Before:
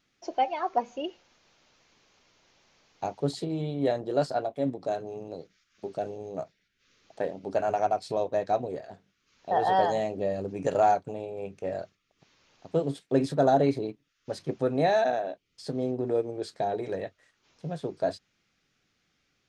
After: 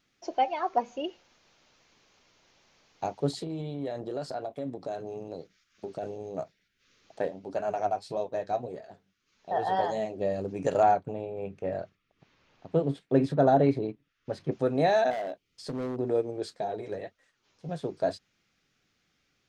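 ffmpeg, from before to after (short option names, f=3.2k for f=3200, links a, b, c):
-filter_complex "[0:a]asettb=1/sr,asplit=3[a][b][c];[a]atrim=end=3.324[d];[b]atrim=start=3.32:end=6.03,asetpts=PTS-STARTPTS,afade=t=in:d=0.004:c=qsin,afade=t=out:st=2.706:d=0.004:c=qsin,acompressor=threshold=-31dB:ratio=4:attack=3.2:release=140:knee=1:detection=peak[e];[c]atrim=start=6.026[f];[d][e]acrossfade=d=0.004:c1=hsin:c2=qsin[g];[g][f]acrossfade=d=0.004:c1=qsin:c2=hsin,asplit=3[h][i][j];[h]afade=t=out:st=7.28:d=0.02[k];[i]flanger=delay=4.5:depth=6.1:regen=54:speed=1.7:shape=sinusoidal,afade=t=in:st=7.28:d=0.02,afade=t=out:st=10.2:d=0.02[l];[j]afade=t=in:st=10.2:d=0.02[m];[k][l][m]amix=inputs=3:normalize=0,asettb=1/sr,asplit=3[n][o][p];[n]atrim=end=10.834[q];[o]atrim=start=10.83:end=14.52,asetpts=PTS-STARTPTS,afade=t=in:d=0.004:c=qsin,afade=t=out:st=3.686:d=0.004:c=qsin,bass=f=250:g=3,treble=f=4k:g=-11[r];[p]atrim=start=14.516[s];[q][r]acrossfade=d=0.004:c1=hsin:c2=qsin[t];[t][s]acrossfade=d=0.004:c1=qsin:c2=hsin,asplit=3[u][v][w];[u]afade=t=out:st=15.1:d=0.02[x];[v]volume=29dB,asoftclip=hard,volume=-29dB,afade=t=in:st=15.1:d=0.02,afade=t=out:st=15.96:d=0.02[y];[w]afade=t=in:st=15.96:d=0.02[z];[x][y][z]amix=inputs=3:normalize=0,asettb=1/sr,asplit=3[aa][ab][ac];[aa]atrim=end=16.534[ad];[ab]atrim=start=16.53:end=17.69,asetpts=PTS-STARTPTS,afade=t=in:d=0.004:c=qsin,afade=t=out:st=1.156:d=0.004:c=qsin,flanger=delay=3.7:depth=6.6:regen=37:speed=1.5:shape=sinusoidal[ae];[ac]atrim=start=17.686[af];[ad][ae]acrossfade=d=0.004:c1=hsin:c2=qsin[ag];[ag][af]acrossfade=d=0.004:c1=qsin:c2=hsin"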